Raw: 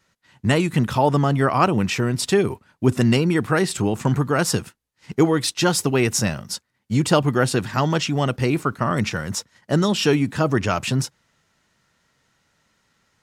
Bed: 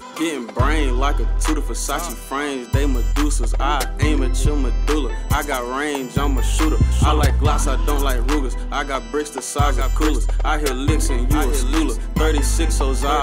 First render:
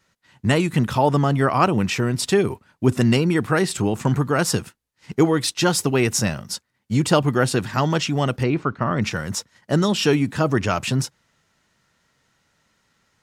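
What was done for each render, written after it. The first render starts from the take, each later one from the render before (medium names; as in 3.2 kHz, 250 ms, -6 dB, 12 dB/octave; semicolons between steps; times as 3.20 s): 8.43–9.02 s: distance through air 180 m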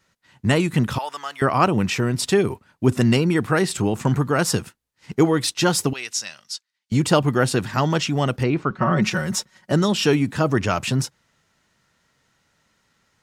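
0.98–1.42 s: high-pass 1.4 kHz; 5.93–6.92 s: band-pass filter 4.5 kHz, Q 1.1; 8.70–9.72 s: comb 5.4 ms, depth 92%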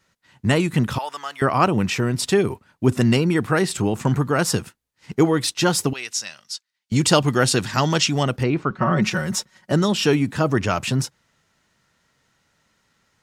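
6.96–8.23 s: peaking EQ 5.8 kHz +8 dB 2.2 oct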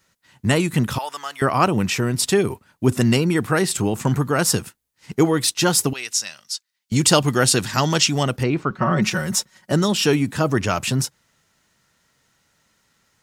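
treble shelf 7.3 kHz +9.5 dB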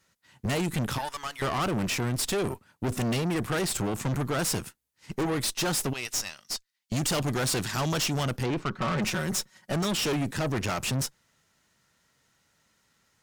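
valve stage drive 25 dB, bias 0.75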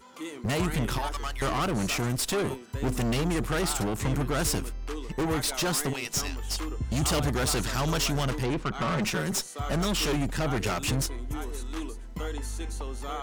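add bed -16.5 dB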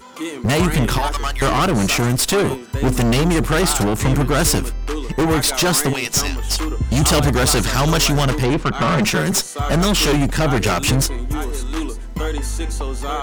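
trim +11 dB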